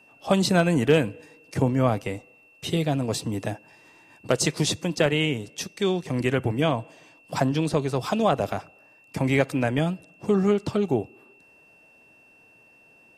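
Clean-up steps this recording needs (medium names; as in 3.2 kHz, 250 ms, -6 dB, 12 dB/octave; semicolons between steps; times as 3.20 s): clip repair -8 dBFS; band-stop 2.7 kHz, Q 30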